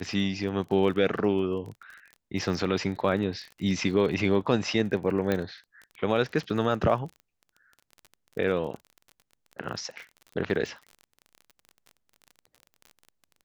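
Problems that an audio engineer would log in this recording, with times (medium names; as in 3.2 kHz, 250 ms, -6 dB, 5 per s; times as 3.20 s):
crackle 30 per s -36 dBFS
5.32 s: pop -14 dBFS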